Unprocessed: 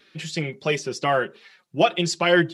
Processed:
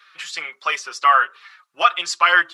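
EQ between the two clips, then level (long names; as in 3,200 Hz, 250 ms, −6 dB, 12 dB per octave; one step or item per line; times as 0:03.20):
high-pass with resonance 1,200 Hz, resonance Q 5.3
+1.5 dB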